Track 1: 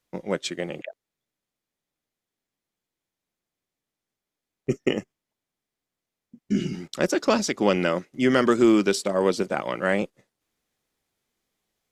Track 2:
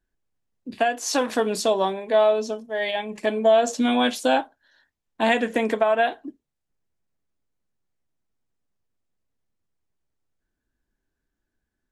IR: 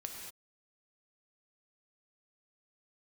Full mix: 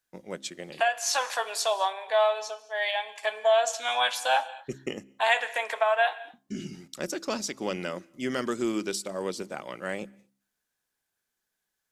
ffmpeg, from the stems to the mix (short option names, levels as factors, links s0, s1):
-filter_complex "[0:a]highshelf=f=4800:g=11,volume=0.282,asplit=2[s0][s1];[s1]volume=0.0841[s2];[1:a]highpass=f=710:w=0.5412,highpass=f=710:w=1.3066,volume=0.794,asplit=2[s3][s4];[s4]volume=0.376[s5];[2:a]atrim=start_sample=2205[s6];[s2][s5]amix=inputs=2:normalize=0[s7];[s7][s6]afir=irnorm=-1:irlink=0[s8];[s0][s3][s8]amix=inputs=3:normalize=0,bandreject=f=66.59:t=h:w=4,bandreject=f=133.18:t=h:w=4,bandreject=f=199.77:t=h:w=4,bandreject=f=266.36:t=h:w=4,bandreject=f=332.95:t=h:w=4"